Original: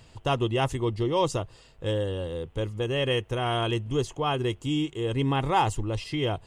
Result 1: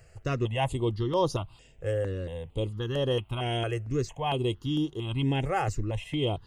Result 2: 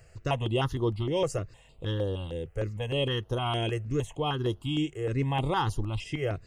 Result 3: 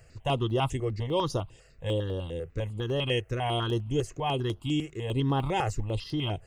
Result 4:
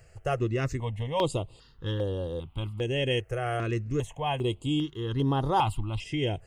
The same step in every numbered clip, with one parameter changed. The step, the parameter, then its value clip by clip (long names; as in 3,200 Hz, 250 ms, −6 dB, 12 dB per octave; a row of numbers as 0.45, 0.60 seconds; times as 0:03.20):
step-sequenced phaser, speed: 4.4, 6.5, 10, 2.5 Hertz